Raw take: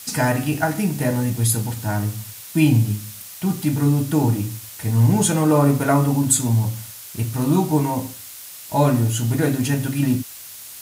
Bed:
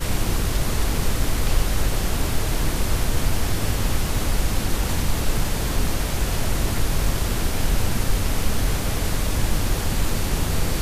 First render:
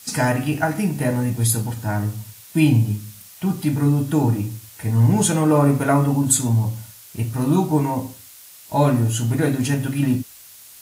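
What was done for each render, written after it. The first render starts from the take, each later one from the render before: noise print and reduce 6 dB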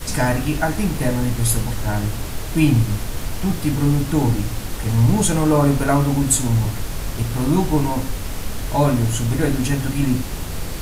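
add bed -5 dB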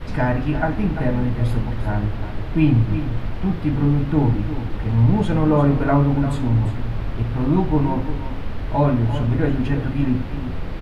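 distance through air 390 m; delay 346 ms -11 dB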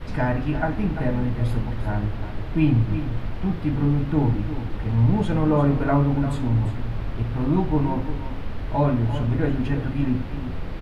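trim -3 dB

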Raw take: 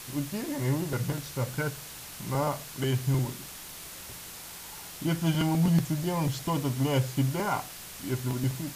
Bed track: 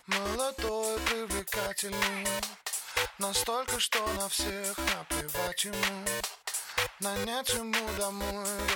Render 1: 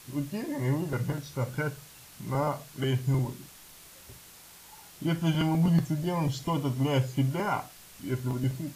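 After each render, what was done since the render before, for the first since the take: noise print and reduce 8 dB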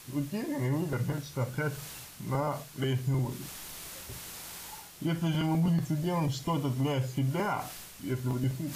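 peak limiter -21 dBFS, peak gain reduction 7.5 dB; reverse; upward compressor, threshold -34 dBFS; reverse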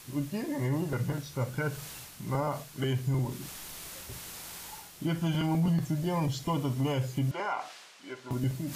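7.31–8.31 s: band-pass 520–5200 Hz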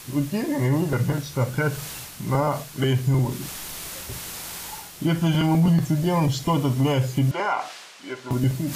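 trim +8.5 dB

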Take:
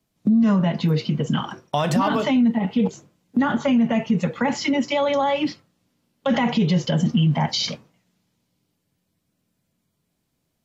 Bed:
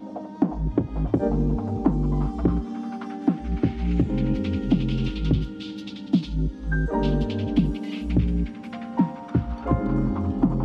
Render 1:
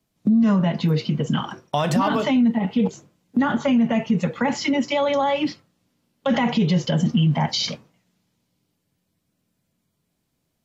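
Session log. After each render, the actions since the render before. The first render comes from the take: no audible change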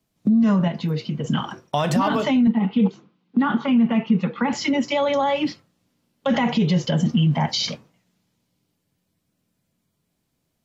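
0.68–1.24 s: gain -4 dB; 2.47–4.53 s: cabinet simulation 190–4100 Hz, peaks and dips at 200 Hz +7 dB, 600 Hz -9 dB, 1.2 kHz +4 dB, 1.8 kHz -4 dB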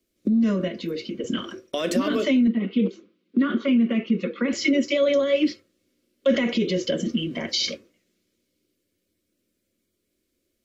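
static phaser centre 350 Hz, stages 4; small resonant body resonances 360/540/2200 Hz, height 8 dB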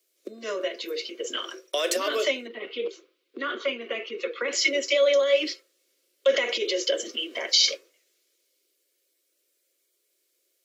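steep high-pass 390 Hz 36 dB/octave; treble shelf 3.6 kHz +8.5 dB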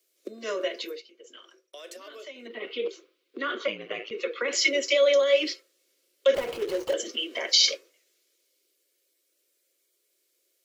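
0.83–2.53 s: dip -18 dB, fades 0.19 s; 3.67–4.11 s: ring modulator 54 Hz; 6.34–6.94 s: median filter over 25 samples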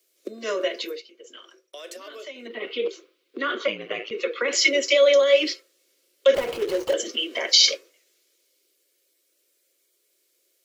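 trim +4 dB

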